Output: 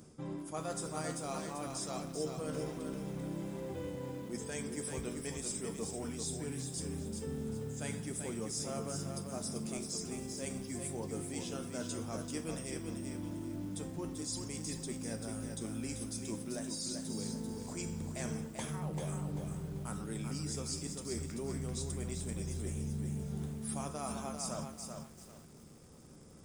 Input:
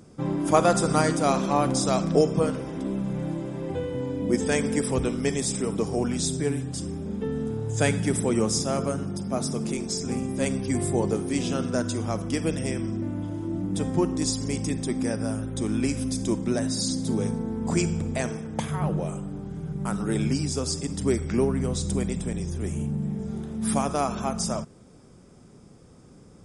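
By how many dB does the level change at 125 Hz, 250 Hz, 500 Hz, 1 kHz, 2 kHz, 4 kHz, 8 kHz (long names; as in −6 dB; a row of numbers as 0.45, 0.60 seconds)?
−12.5, −14.0, −15.0, −16.0, −14.0, −11.0, −8.5 decibels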